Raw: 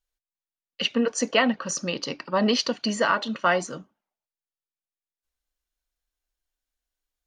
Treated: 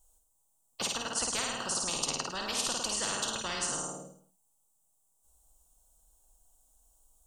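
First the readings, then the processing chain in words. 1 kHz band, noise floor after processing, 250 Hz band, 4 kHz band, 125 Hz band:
-10.0 dB, -73 dBFS, -17.0 dB, -4.5 dB, -10.0 dB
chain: EQ curve 160 Hz 0 dB, 370 Hz -5 dB, 540 Hz -2 dB, 850 Hz +3 dB, 1400 Hz -13 dB, 2000 Hz -29 dB, 3100 Hz -12 dB, 4800 Hz -13 dB, 8000 Hz +10 dB, 12000 Hz +1 dB; on a send: flutter echo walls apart 9.1 m, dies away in 0.58 s; on the sum: spectral compressor 10:1; gain -4.5 dB

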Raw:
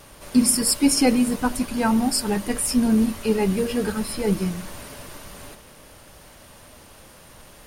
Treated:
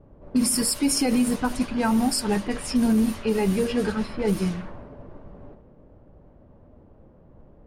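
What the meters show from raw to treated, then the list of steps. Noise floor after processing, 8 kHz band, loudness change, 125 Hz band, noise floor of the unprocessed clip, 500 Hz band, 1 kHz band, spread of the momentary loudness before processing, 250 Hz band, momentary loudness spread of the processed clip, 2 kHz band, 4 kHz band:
-53 dBFS, -4.0 dB, -2.5 dB, -1.0 dB, -48 dBFS, -1.5 dB, -2.0 dB, 20 LU, -2.0 dB, 6 LU, -2.0 dB, -3.0 dB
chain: low-pass opened by the level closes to 390 Hz, open at -17.5 dBFS; limiter -13.5 dBFS, peak gain reduction 7.5 dB

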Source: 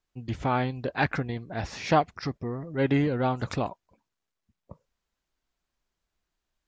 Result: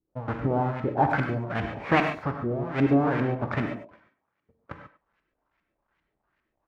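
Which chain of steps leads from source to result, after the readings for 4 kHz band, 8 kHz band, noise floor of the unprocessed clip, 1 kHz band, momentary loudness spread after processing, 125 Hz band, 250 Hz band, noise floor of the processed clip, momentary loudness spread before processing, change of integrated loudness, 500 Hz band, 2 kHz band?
-3.0 dB, n/a, -85 dBFS, +1.5 dB, 12 LU, +1.5 dB, +3.0 dB, -81 dBFS, 10 LU, +2.0 dB, +1.5 dB, +2.5 dB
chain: half-waves squared off; HPF 79 Hz 6 dB/oct; in parallel at +1.5 dB: compressor, threshold -29 dBFS, peak gain reduction 15 dB; on the sum: LFO low-pass saw up 2.5 Hz 250–2400 Hz; speakerphone echo 0.1 s, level -14 dB; non-linear reverb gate 0.16 s flat, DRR 4 dB; mismatched tape noise reduction encoder only; gain -7.5 dB

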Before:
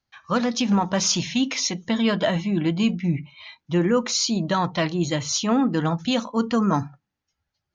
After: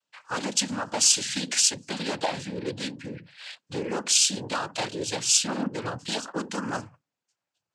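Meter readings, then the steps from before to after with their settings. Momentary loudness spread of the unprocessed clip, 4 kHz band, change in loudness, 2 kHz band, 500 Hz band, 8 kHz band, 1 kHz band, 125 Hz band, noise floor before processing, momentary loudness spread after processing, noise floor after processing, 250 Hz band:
5 LU, +1.0 dB, -2.5 dB, -2.5 dB, -7.5 dB, n/a, -6.0 dB, -12.5 dB, -82 dBFS, 15 LU, under -85 dBFS, -12.5 dB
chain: wavefolder -13.5 dBFS; compressor 2:1, threshold -28 dBFS, peak gain reduction 6.5 dB; tone controls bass -11 dB, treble +11 dB; noise vocoder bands 8; mismatched tape noise reduction decoder only

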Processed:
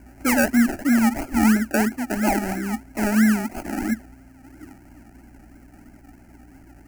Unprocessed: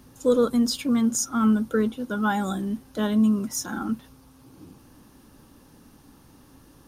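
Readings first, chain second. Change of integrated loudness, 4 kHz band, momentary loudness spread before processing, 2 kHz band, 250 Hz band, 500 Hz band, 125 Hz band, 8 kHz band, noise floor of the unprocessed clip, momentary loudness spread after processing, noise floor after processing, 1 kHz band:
+3.0 dB, -2.0 dB, 9 LU, +10.0 dB, +3.0 dB, -2.5 dB, +2.0 dB, -0.5 dB, -54 dBFS, 9 LU, -49 dBFS, +4.0 dB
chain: median filter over 5 samples; decimation with a swept rate 33×, swing 60% 3 Hz; fixed phaser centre 720 Hz, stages 8; hum 60 Hz, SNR 28 dB; gain +6 dB

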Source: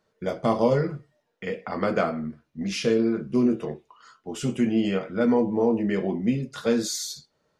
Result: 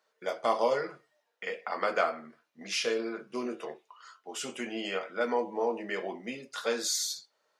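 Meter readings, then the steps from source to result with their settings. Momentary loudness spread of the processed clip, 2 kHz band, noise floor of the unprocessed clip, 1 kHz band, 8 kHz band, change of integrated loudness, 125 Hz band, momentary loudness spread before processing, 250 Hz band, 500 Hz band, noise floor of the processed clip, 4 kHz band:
13 LU, 0.0 dB, -73 dBFS, -1.0 dB, 0.0 dB, -7.0 dB, under -20 dB, 14 LU, -16.0 dB, -6.5 dB, -77 dBFS, 0.0 dB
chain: HPF 660 Hz 12 dB/oct

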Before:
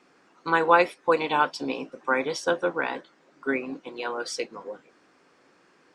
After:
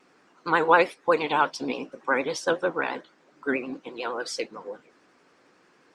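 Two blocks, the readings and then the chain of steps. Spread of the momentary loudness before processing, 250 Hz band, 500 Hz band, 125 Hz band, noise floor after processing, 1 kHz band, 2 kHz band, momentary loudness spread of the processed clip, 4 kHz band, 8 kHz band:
17 LU, 0.0 dB, 0.0 dB, 0.0 dB, -61 dBFS, 0.0 dB, +0.5 dB, 17 LU, 0.0 dB, +0.5 dB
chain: vibrato 11 Hz 88 cents

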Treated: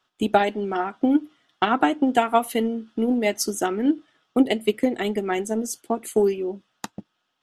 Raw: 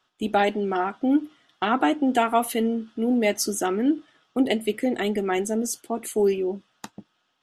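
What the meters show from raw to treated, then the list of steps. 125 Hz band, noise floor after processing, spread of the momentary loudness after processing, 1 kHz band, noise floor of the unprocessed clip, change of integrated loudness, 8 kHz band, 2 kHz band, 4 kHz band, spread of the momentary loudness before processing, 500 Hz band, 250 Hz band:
n/a, -75 dBFS, 8 LU, +1.5 dB, -71 dBFS, +1.0 dB, -1.0 dB, +0.5 dB, +0.5 dB, 8 LU, +1.0 dB, +1.0 dB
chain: transient shaper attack +7 dB, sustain -2 dB; gain -1.5 dB

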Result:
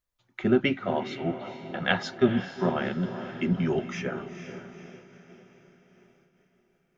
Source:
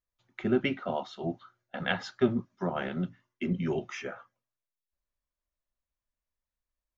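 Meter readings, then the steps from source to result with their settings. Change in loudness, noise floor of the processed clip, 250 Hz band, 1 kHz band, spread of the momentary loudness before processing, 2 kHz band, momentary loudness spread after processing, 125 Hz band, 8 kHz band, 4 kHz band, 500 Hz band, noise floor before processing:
+4.0 dB, -72 dBFS, +4.5 dB, +4.5 dB, 13 LU, +5.0 dB, 18 LU, +4.5 dB, n/a, +5.0 dB, +4.5 dB, under -85 dBFS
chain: on a send: diffused feedback echo 0.466 s, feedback 49%, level -10.5 dB; on the sum: noise-modulated level, depth 55%; gain +6 dB

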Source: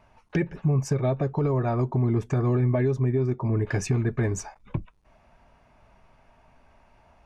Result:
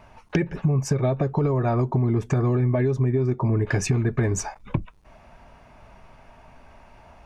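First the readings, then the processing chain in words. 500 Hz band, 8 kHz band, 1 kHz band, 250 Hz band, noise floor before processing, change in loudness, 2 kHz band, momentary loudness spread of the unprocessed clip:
+2.0 dB, +5.5 dB, +3.5 dB, +2.0 dB, -60 dBFS, +2.0 dB, +3.5 dB, 9 LU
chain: compressor 4:1, threshold -28 dBFS, peak gain reduction 8 dB; gain +8.5 dB

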